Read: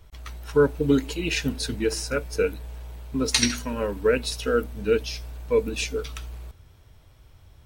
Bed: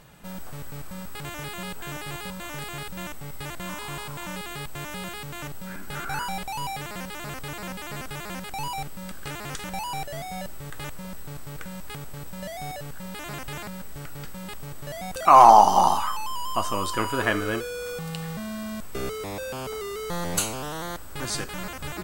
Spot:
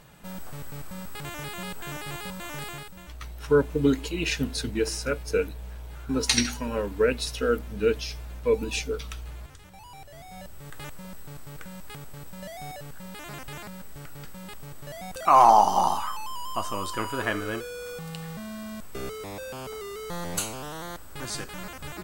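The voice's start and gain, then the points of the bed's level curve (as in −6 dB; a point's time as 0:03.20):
2.95 s, −1.5 dB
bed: 0:02.69 −1 dB
0:03.18 −17.5 dB
0:09.74 −17.5 dB
0:10.73 −4 dB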